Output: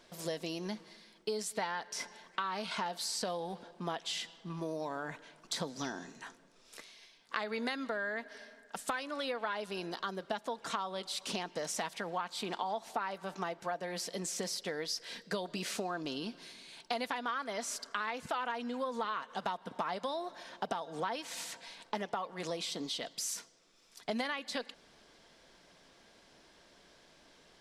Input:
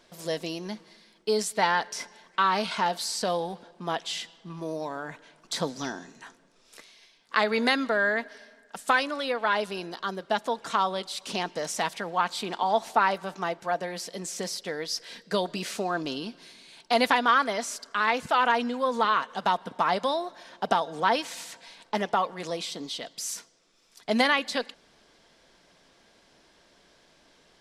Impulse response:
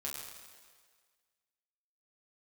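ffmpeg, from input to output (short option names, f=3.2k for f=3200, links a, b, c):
-af "acompressor=threshold=-32dB:ratio=6,volume=-1.5dB"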